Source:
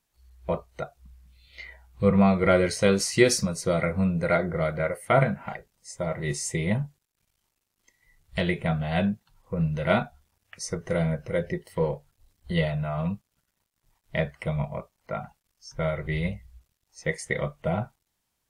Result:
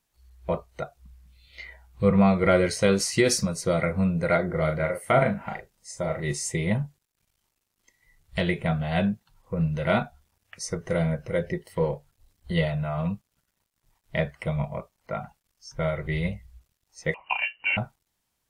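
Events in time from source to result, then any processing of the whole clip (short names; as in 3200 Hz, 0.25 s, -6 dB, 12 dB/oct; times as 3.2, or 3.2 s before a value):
4.46–6.21 doubler 39 ms -6 dB
17.14–17.77 inverted band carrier 2900 Hz
whole clip: maximiser +9 dB; gain -8.5 dB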